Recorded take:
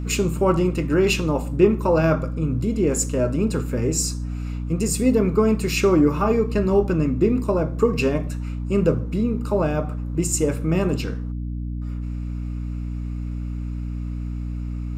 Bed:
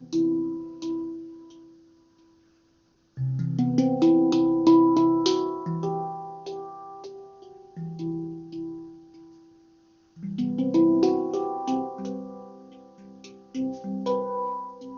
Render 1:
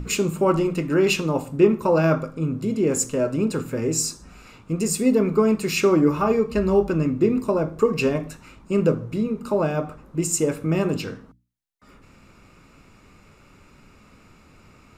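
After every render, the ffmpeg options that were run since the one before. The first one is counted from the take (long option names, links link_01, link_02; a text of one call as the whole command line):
ffmpeg -i in.wav -af "bandreject=frequency=60:width_type=h:width=6,bandreject=frequency=120:width_type=h:width=6,bandreject=frequency=180:width_type=h:width=6,bandreject=frequency=240:width_type=h:width=6,bandreject=frequency=300:width_type=h:width=6" out.wav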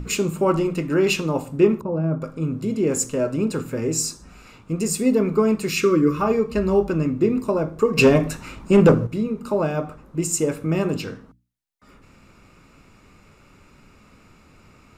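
ffmpeg -i in.wav -filter_complex "[0:a]asettb=1/sr,asplit=3[link_01][link_02][link_03];[link_01]atrim=end=1.814[link_04];[link_02]atrim=start=1.81:end=2.22,asetpts=PTS-STARTPTS,afade=type=in:duration=0.004:curve=qsin,afade=type=out:start_time=0.406:duration=0.004:curve=qsin,bandpass=frequency=130:width_type=q:width=0.62[link_05];[link_03]atrim=start=2.216[link_06];[link_04][link_05]acrossfade=duration=0.004:curve1=hsin:curve2=qsin[link_07];[link_07][link_06]acrossfade=duration=0.004:curve1=qsin:curve2=hsin,asettb=1/sr,asplit=3[link_08][link_09][link_10];[link_08]atrim=end=5.694[link_11];[link_09]atrim=start=5.69:end=6.2,asetpts=PTS-STARTPTS,afade=type=in:duration=0.004:curve=qsin,afade=type=out:start_time=0.506:duration=0.004:curve=qsin,asuperstop=centerf=750:order=12:qfactor=1.6[link_12];[link_10]atrim=start=6.196[link_13];[link_11][link_12]acrossfade=duration=0.004:curve1=hsin:curve2=qsin[link_14];[link_14][link_13]acrossfade=duration=0.004:curve1=qsin:curve2=hsin,asettb=1/sr,asplit=3[link_15][link_16][link_17];[link_15]atrim=end=7.974[link_18];[link_16]atrim=start=7.97:end=9.07,asetpts=PTS-STARTPTS,afade=type=in:duration=0.004:curve=qsin,afade=type=out:start_time=1.096:duration=0.004:curve=qsin,aeval=exprs='0.447*sin(PI/2*1.78*val(0)/0.447)':channel_layout=same[link_19];[link_17]atrim=start=9.066[link_20];[link_18][link_19]acrossfade=duration=0.004:curve1=hsin:curve2=qsin[link_21];[link_21][link_20]acrossfade=duration=0.004:curve1=qsin:curve2=hsin" out.wav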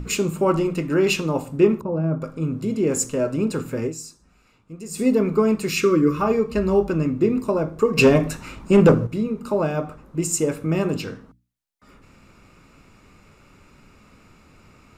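ffmpeg -i in.wav -filter_complex "[0:a]asplit=3[link_01][link_02][link_03];[link_01]atrim=end=4.26,asetpts=PTS-STARTPTS,afade=type=out:start_time=3.86:duration=0.4:curve=exp:silence=0.223872[link_04];[link_02]atrim=start=4.26:end=4.59,asetpts=PTS-STARTPTS,volume=-13dB[link_05];[link_03]atrim=start=4.59,asetpts=PTS-STARTPTS,afade=type=in:duration=0.4:curve=exp:silence=0.223872[link_06];[link_04][link_05][link_06]concat=n=3:v=0:a=1" out.wav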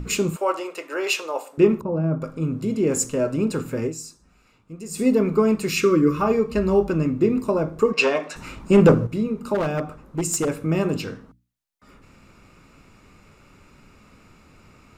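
ffmpeg -i in.wav -filter_complex "[0:a]asettb=1/sr,asplit=3[link_01][link_02][link_03];[link_01]atrim=end=0.364[link_04];[link_02]atrim=start=0.36:end=1.58,asetpts=PTS-STARTPTS,afade=type=in:duration=0.004:curve=qsin,afade=type=out:start_time=1.216:duration=0.004:curve=qsin,highpass=frequency=480:width=0.5412,highpass=frequency=480:width=1.3066[link_05];[link_03]atrim=start=1.576[link_06];[link_04][link_05]acrossfade=duration=0.004:curve1=hsin:curve2=qsin[link_07];[link_07][link_06]acrossfade=duration=0.004:curve1=qsin:curve2=hsin,asplit=3[link_08][link_09][link_10];[link_08]afade=type=out:start_time=7.92:duration=0.02[link_11];[link_09]highpass=590,lowpass=5800,afade=type=in:start_time=7.92:duration=0.02,afade=type=out:start_time=8.35:duration=0.02[link_12];[link_10]afade=type=in:start_time=8.35:duration=0.02[link_13];[link_11][link_12][link_13]amix=inputs=3:normalize=0,asplit=3[link_14][link_15][link_16];[link_14]afade=type=out:start_time=9.54:duration=0.02[link_17];[link_15]aeval=exprs='0.15*(abs(mod(val(0)/0.15+3,4)-2)-1)':channel_layout=same,afade=type=in:start_time=9.54:duration=0.02,afade=type=out:start_time=10.48:duration=0.02[link_18];[link_16]afade=type=in:start_time=10.48:duration=0.02[link_19];[link_17][link_18][link_19]amix=inputs=3:normalize=0" out.wav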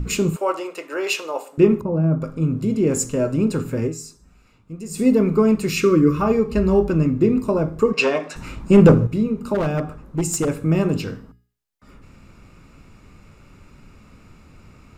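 ffmpeg -i in.wav -af "lowshelf=frequency=200:gain=8,bandreject=frequency=414:width_type=h:width=4,bandreject=frequency=828:width_type=h:width=4,bandreject=frequency=1242:width_type=h:width=4,bandreject=frequency=1656:width_type=h:width=4,bandreject=frequency=2070:width_type=h:width=4,bandreject=frequency=2484:width_type=h:width=4,bandreject=frequency=2898:width_type=h:width=4,bandreject=frequency=3312:width_type=h:width=4,bandreject=frequency=3726:width_type=h:width=4,bandreject=frequency=4140:width_type=h:width=4,bandreject=frequency=4554:width_type=h:width=4,bandreject=frequency=4968:width_type=h:width=4,bandreject=frequency=5382:width_type=h:width=4,bandreject=frequency=5796:width_type=h:width=4,bandreject=frequency=6210:width_type=h:width=4,bandreject=frequency=6624:width_type=h:width=4,bandreject=frequency=7038:width_type=h:width=4,bandreject=frequency=7452:width_type=h:width=4,bandreject=frequency=7866:width_type=h:width=4,bandreject=frequency=8280:width_type=h:width=4,bandreject=frequency=8694:width_type=h:width=4,bandreject=frequency=9108:width_type=h:width=4,bandreject=frequency=9522:width_type=h:width=4,bandreject=frequency=9936:width_type=h:width=4,bandreject=frequency=10350:width_type=h:width=4,bandreject=frequency=10764:width_type=h:width=4,bandreject=frequency=11178:width_type=h:width=4,bandreject=frequency=11592:width_type=h:width=4,bandreject=frequency=12006:width_type=h:width=4,bandreject=frequency=12420:width_type=h:width=4,bandreject=frequency=12834:width_type=h:width=4,bandreject=frequency=13248:width_type=h:width=4,bandreject=frequency=13662:width_type=h:width=4,bandreject=frequency=14076:width_type=h:width=4,bandreject=frequency=14490:width_type=h:width=4,bandreject=frequency=14904:width_type=h:width=4,bandreject=frequency=15318:width_type=h:width=4,bandreject=frequency=15732:width_type=h:width=4" out.wav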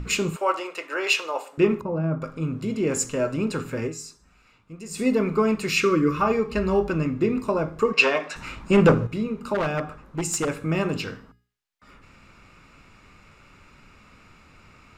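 ffmpeg -i in.wav -af "lowpass=frequency=2300:poles=1,tiltshelf=frequency=820:gain=-8" out.wav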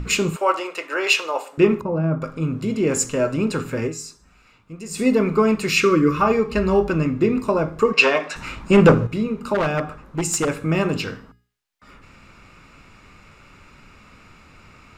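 ffmpeg -i in.wav -af "volume=4dB,alimiter=limit=-2dB:level=0:latency=1" out.wav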